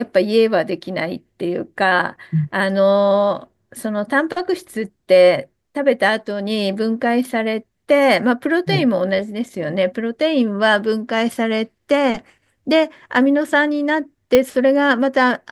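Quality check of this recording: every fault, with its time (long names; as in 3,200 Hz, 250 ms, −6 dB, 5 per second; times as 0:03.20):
0:14.35: click 0 dBFS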